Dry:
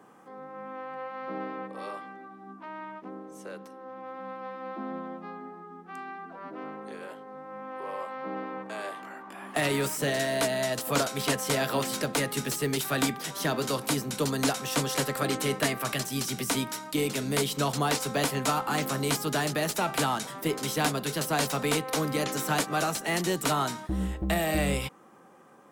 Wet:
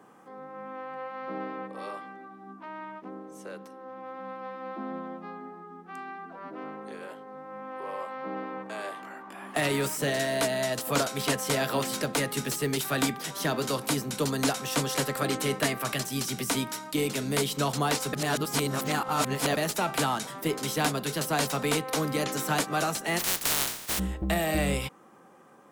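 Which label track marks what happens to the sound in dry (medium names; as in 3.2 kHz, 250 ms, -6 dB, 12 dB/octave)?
18.130000	19.570000	reverse
23.180000	23.980000	spectral contrast reduction exponent 0.12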